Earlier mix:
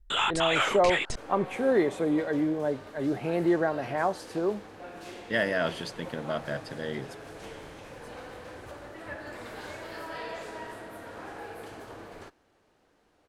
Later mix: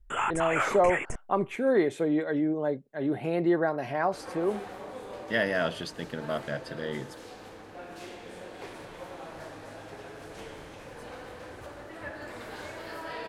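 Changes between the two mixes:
first sound: add Butterworth band-stop 4100 Hz, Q 0.82; second sound: entry +2.95 s

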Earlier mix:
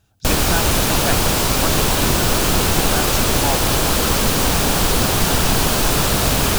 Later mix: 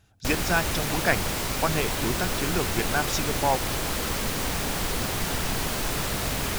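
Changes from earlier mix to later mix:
background -11.5 dB; master: add bell 2000 Hz +5.5 dB 0.46 oct

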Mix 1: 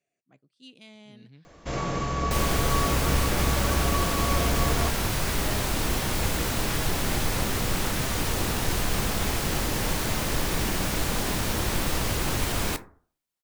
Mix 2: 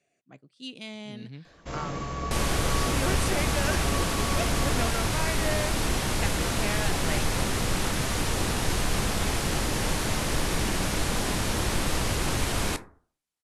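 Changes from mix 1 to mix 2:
speech +9.5 dB; first sound -5.0 dB; master: add steep low-pass 12000 Hz 36 dB/oct

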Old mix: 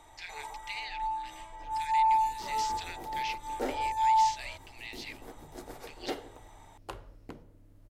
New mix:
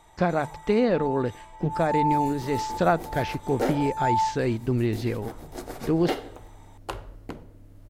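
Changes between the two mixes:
speech: remove steep high-pass 2000 Hz 48 dB/oct; second sound +7.5 dB; reverb: on, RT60 0.70 s

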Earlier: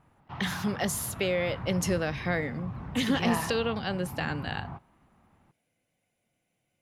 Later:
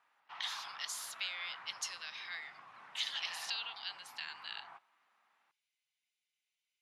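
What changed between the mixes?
speech: add band-pass 4100 Hz, Q 1.6; master: add HPF 1400 Hz 12 dB/oct

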